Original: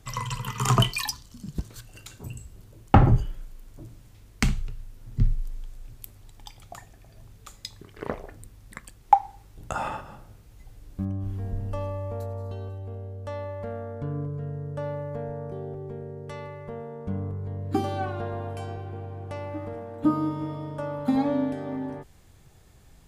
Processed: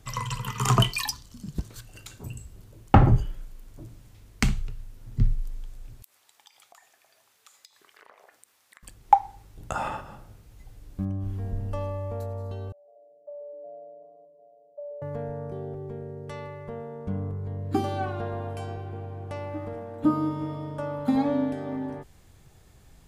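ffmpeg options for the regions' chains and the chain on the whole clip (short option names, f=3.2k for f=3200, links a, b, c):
-filter_complex "[0:a]asettb=1/sr,asplit=3[a][b][c];[a]atrim=end=6.024[d];[b]atrim=start=6.02:end=8.83,asetpts=PTS-STARTPTS,afade=t=in:d=0.004:c=qsin,afade=t=out:st=2.806:d=0.004:c=qsin,highpass=890,acompressor=threshold=-49dB:ratio=6:attack=3.2:release=140:knee=1:detection=peak[e];[c]atrim=start=8.826[f];[d][e]acrossfade=d=0.004:c1=hsin:c2=qsin[g];[g][f]acrossfade=d=0.004:c1=qsin:c2=hsin,asettb=1/sr,asplit=3[h][i][j];[h]atrim=end=12.724[k];[i]atrim=start=12.72:end=15.02,asetpts=PTS-STARTPTS,afade=t=in:d=0.004:c=qsin,afade=t=out:st=2.296:d=0.004:c=qsin,asuperpass=centerf=630:order=4:qfactor=6.9,asplit=4[l][m][n][o];[m]adelay=126,afreqshift=-140,volume=-17.5dB[p];[n]adelay=252,afreqshift=-280,volume=-25.9dB[q];[o]adelay=378,afreqshift=-420,volume=-34.3dB[r];[l][p][q][r]amix=inputs=4:normalize=0,atrim=end_sample=101430[s];[j]atrim=start=15.016[t];[k][s]acrossfade=d=0.004:c1=hsin:c2=qsin[u];[u][t]acrossfade=d=0.004:c1=qsin:c2=hsin"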